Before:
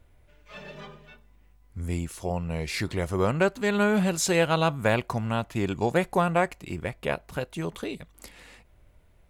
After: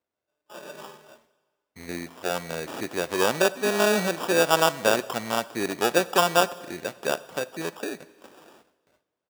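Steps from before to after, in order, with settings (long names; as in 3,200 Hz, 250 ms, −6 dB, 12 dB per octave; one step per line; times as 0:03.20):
in parallel at −5 dB: floating-point word with a short mantissa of 2 bits
on the sum: high-shelf EQ 5,100 Hz −11.5 dB
noise gate with hold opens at −41 dBFS
downsampling to 16,000 Hz
decimation without filtering 21×
high-pass filter 330 Hz 12 dB per octave
on a send at −17 dB: convolution reverb RT60 1.6 s, pre-delay 6 ms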